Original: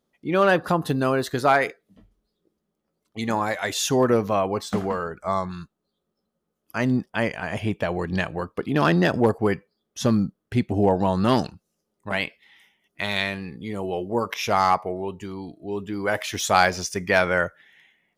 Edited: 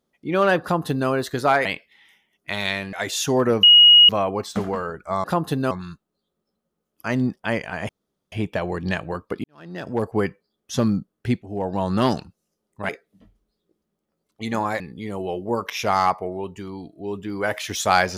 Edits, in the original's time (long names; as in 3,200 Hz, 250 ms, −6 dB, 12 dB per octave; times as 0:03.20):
0:00.62–0:01.09: duplicate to 0:05.41
0:01.65–0:03.56: swap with 0:12.16–0:13.44
0:04.26: insert tone 2,890 Hz −7 dBFS 0.46 s
0:07.59: splice in room tone 0.43 s
0:08.71–0:09.43: fade in quadratic
0:10.69–0:11.21: fade in, from −19 dB